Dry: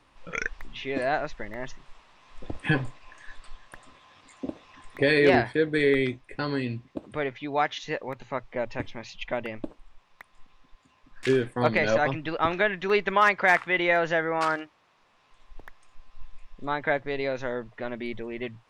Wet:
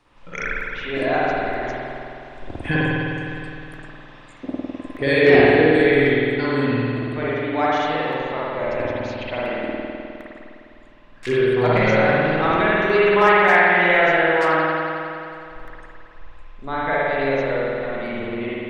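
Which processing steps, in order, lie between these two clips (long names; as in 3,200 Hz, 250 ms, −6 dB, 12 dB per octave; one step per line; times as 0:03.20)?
spring reverb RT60 2.7 s, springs 51 ms, chirp 40 ms, DRR −8 dB
level −1 dB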